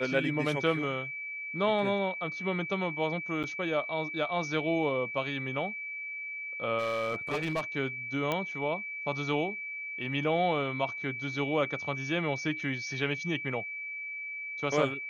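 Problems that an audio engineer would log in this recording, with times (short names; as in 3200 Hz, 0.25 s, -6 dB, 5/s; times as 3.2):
tone 2300 Hz -36 dBFS
3.43–3.44 gap 8 ms
6.78–7.61 clipped -26.5 dBFS
8.32 pop -16 dBFS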